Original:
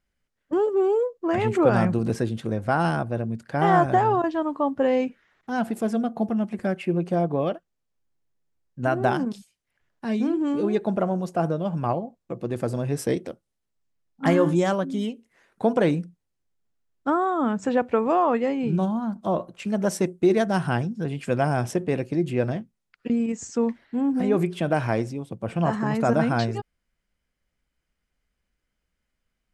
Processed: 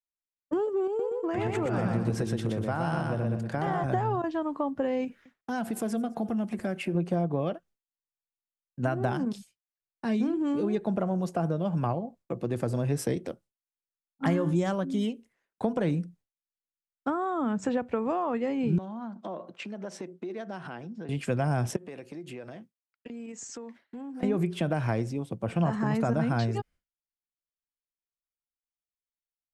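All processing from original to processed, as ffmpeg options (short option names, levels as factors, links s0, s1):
-filter_complex "[0:a]asettb=1/sr,asplit=3[s0][s1][s2];[s0]atrim=end=0.874[s3];[s1]atrim=start=0.87:end=3.84,asetpts=PTS-STARTPTS,afade=t=in:d=0.004:c=qsin,afade=t=out:st=2.966:d=0.004:c=qsin,acompressor=threshold=0.0501:ratio=2.5:attack=3.2:release=140:knee=1:detection=peak,aecho=1:1:121|242|363|484|605:0.708|0.248|0.0867|0.0304|0.0106,atrim=end_sample=130977[s4];[s2]atrim=start=3.836[s5];[s3][s4]acrossfade=d=0.004:c1=hsin:c2=qsin[s6];[s6][s5]acrossfade=d=0.004:c1=qsin:c2=hsin,asettb=1/sr,asplit=3[s7][s8][s9];[s7]atrim=end=5.044[s10];[s8]atrim=start=5.04:end=6.95,asetpts=PTS-STARTPTS,afade=t=in:d=0.004:c=qsin,afade=t=out:st=1.906:d=0.004:c=qsin,highshelf=f=6600:g=7,acompressor=threshold=0.0447:ratio=2.5:attack=3.2:release=140:knee=1:detection=peak,aecho=1:1:214:0.075,atrim=end_sample=84231[s11];[s9]atrim=start=6.946[s12];[s10][s11]acrossfade=d=0.004:c1=hsin:c2=qsin[s13];[s13][s12]acrossfade=d=0.004:c1=qsin:c2=hsin,asettb=1/sr,asplit=3[s14][s15][s16];[s14]atrim=end=18.784[s17];[s15]atrim=start=18.78:end=21.09,asetpts=PTS-STARTPTS,afade=t=in:d=0.004:c=qsin,afade=t=out:st=2.306:d=0.004:c=qsin,acompressor=threshold=0.0251:ratio=12:attack=3.2:release=140:knee=1:detection=peak,highpass=220,lowpass=4800[s18];[s16]atrim=start=21.086[s19];[s17][s18]acrossfade=d=0.004:c1=hsin:c2=qsin[s20];[s20][s19]acrossfade=d=0.004:c1=qsin:c2=hsin,asettb=1/sr,asplit=3[s21][s22][s23];[s21]atrim=end=21.764[s24];[s22]atrim=start=21.76:end=24.23,asetpts=PTS-STARTPTS,afade=t=in:d=0.004:c=qsin,afade=t=out:st=2.466:d=0.004:c=qsin,highpass=f=410:p=1,acompressor=threshold=0.0126:ratio=6:attack=3.2:release=140:knee=1:detection=peak[s25];[s23]atrim=start=24.226[s26];[s24][s25]acrossfade=d=0.004:c1=hsin:c2=qsin[s27];[s27][s26]acrossfade=d=0.004:c1=qsin:c2=hsin,agate=range=0.0224:threshold=0.00447:ratio=3:detection=peak,acrossover=split=180[s28][s29];[s29]acompressor=threshold=0.0447:ratio=5[s30];[s28][s30]amix=inputs=2:normalize=0"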